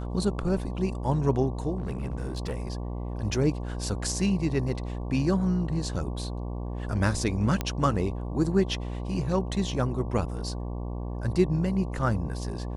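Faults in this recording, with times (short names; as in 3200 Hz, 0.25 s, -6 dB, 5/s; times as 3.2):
buzz 60 Hz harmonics 19 -33 dBFS
1.78–2.6 clipped -27 dBFS
7.61 pop -13 dBFS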